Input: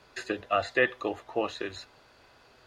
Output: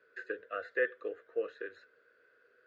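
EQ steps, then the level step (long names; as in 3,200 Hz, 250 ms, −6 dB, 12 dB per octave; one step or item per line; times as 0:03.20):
pair of resonant band-passes 850 Hz, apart 1.7 octaves
0.0 dB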